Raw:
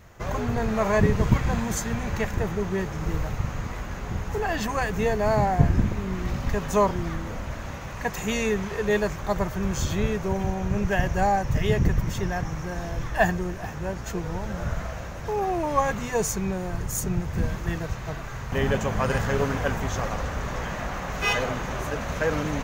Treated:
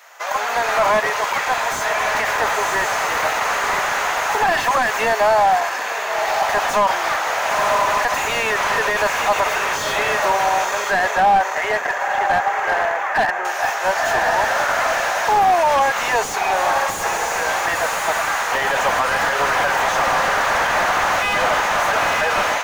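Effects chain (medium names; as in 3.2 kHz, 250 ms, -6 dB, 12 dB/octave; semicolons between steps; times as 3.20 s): 10.65–13.45 s: low-pass 2.2 kHz 24 dB/octave; echo that smears into a reverb 1013 ms, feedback 40%, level -10 dB; level rider gain up to 11.5 dB; saturation -7.5 dBFS, distortion -18 dB; high-pass 700 Hz 24 dB/octave; band-stop 1.1 kHz, Q 24; loudness maximiser +17 dB; slew-rate limiter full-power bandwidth 490 Hz; trim -6 dB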